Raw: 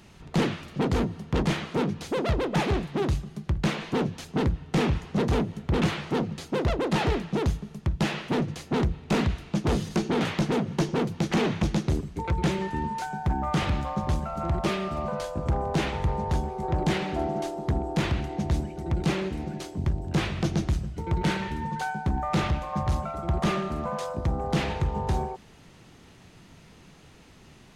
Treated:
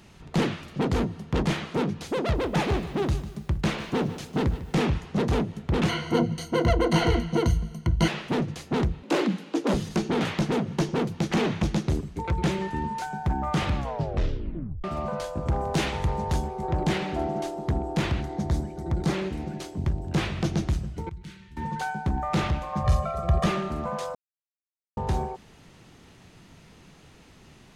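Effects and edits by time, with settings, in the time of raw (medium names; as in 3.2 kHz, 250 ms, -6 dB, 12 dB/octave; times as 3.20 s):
2.20–4.75 s: bit-crushed delay 149 ms, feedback 35%, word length 8-bit, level -13.5 dB
5.89–8.08 s: rippled EQ curve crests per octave 1.9, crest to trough 16 dB
9.03–9.74 s: frequency shift +130 Hz
13.75 s: tape stop 1.09 s
15.54–16.48 s: treble shelf 3.6 kHz +7 dB
18.22–19.14 s: peaking EQ 2.7 kHz -9.5 dB 0.45 oct
21.09–21.57 s: amplifier tone stack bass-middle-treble 6-0-2
22.84–23.46 s: comb 1.7 ms, depth 90%
24.15–24.97 s: mute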